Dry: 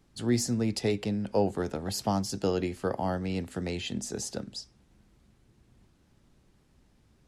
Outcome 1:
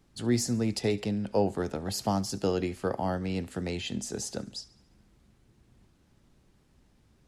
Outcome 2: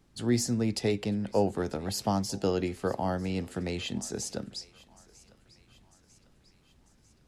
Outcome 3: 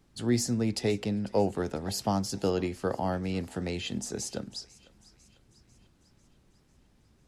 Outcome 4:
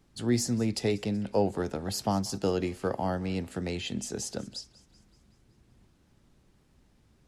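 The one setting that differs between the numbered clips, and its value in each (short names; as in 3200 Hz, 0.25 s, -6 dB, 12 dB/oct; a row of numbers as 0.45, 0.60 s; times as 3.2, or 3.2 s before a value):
thinning echo, time: 70, 947, 497, 189 ms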